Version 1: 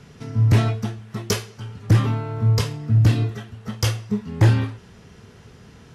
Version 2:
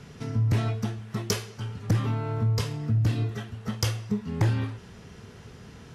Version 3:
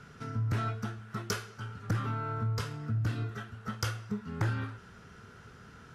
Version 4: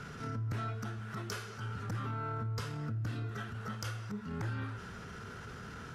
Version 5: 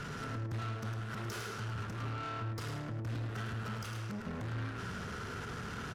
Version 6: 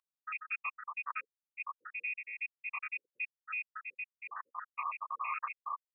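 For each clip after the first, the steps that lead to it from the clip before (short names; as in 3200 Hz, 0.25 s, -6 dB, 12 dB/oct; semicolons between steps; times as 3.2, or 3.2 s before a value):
compressor 2.5:1, threshold -25 dBFS, peak gain reduction 9.5 dB
bell 1400 Hz +14.5 dB 0.43 oct; gain -7.5 dB
compressor, threshold -41 dBFS, peak gain reduction 13.5 dB; transient shaper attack -7 dB, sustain +2 dB; gain +6.5 dB
limiter -33 dBFS, peak gain reduction 9.5 dB; tube stage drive 46 dB, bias 0.45; echo 0.105 s -6 dB; gain +8 dB
random spectral dropouts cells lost 85%; inverted band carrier 2600 Hz; resonant high-pass 1100 Hz, resonance Q 4.9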